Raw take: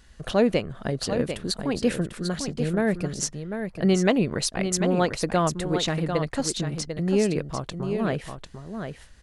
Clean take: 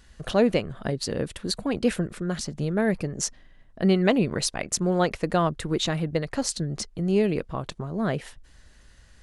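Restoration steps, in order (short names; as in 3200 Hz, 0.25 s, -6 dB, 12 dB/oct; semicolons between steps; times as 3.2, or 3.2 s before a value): inverse comb 0.746 s -7.5 dB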